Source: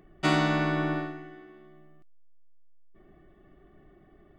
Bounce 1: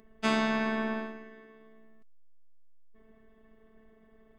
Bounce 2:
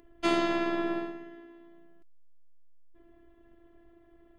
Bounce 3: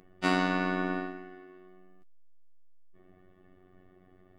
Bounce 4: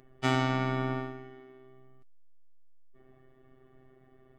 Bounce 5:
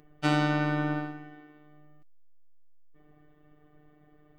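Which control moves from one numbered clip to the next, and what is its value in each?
phases set to zero, frequency: 220, 340, 92, 130, 150 Hertz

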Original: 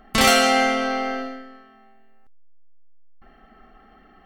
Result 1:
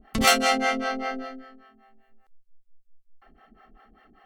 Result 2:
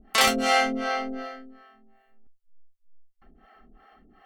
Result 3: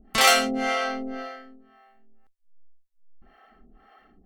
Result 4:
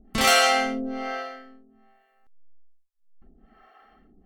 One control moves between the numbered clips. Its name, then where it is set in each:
two-band tremolo in antiphase, speed: 5.1, 2.7, 1.9, 1.2 Hertz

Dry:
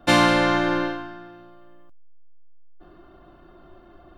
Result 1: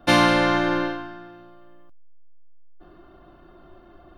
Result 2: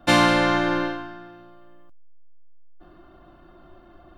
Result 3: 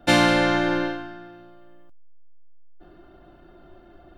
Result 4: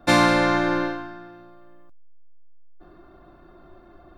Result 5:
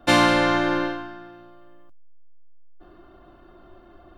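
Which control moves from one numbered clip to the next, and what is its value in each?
notch filter, centre frequency: 7,500, 430, 1,100, 3,000, 160 Hertz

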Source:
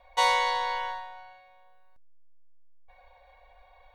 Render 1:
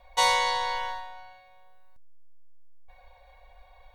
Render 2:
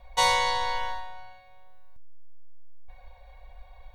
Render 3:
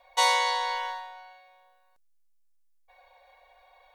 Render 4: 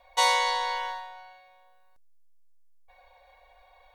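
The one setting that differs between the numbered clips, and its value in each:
bass and treble, bass: +6, +14, −14, −5 decibels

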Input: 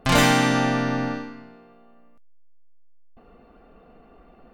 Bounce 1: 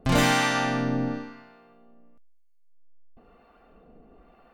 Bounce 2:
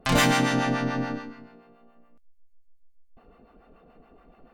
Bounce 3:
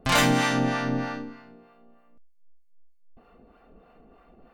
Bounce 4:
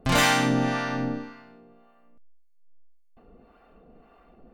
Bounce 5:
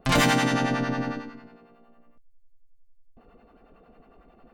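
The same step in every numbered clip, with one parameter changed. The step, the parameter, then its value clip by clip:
two-band tremolo in antiphase, speed: 1, 7, 3.2, 1.8, 11 Hertz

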